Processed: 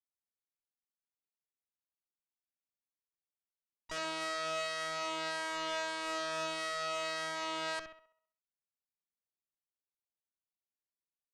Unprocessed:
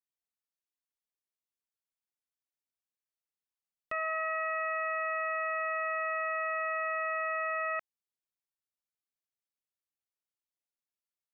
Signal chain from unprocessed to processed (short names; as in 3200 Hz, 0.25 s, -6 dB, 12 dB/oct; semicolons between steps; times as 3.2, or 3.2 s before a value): Wiener smoothing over 25 samples; high shelf 2200 Hz -4 dB; harmoniser -5 st -11 dB, +7 st -9 dB; limiter -28 dBFS, peak gain reduction 4 dB; flutter echo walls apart 11.3 m, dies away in 0.6 s; added harmonics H 3 -16 dB, 4 -14 dB, 6 -7 dB, 7 -15 dB, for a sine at -25.5 dBFS; gain -4 dB